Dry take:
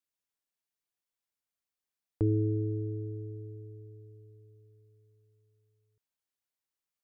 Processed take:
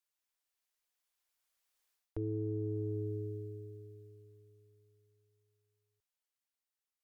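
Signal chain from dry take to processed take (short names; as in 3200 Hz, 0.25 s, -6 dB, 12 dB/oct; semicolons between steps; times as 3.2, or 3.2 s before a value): Doppler pass-by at 2.46, 8 m/s, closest 5.5 m; bell 170 Hz -14.5 dB 2 oct; reverse; compressor 12:1, threshold -46 dBFS, peak gain reduction 15.5 dB; reverse; gain +13 dB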